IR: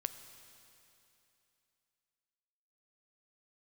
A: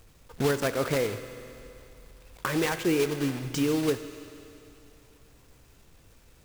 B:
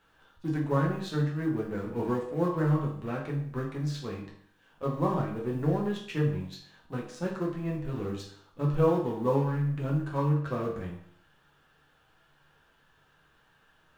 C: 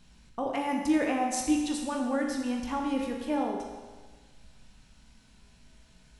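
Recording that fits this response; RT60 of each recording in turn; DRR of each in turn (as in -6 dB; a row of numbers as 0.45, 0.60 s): A; 2.9, 0.60, 1.4 s; 9.5, -2.5, 0.0 dB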